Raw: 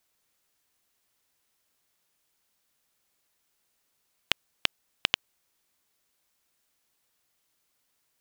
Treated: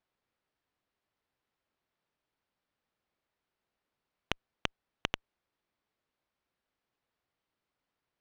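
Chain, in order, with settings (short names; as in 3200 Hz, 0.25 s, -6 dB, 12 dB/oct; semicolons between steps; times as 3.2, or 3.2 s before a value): polynomial smoothing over 15 samples; high shelf 2300 Hz -11 dB; running maximum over 3 samples; gain -2.5 dB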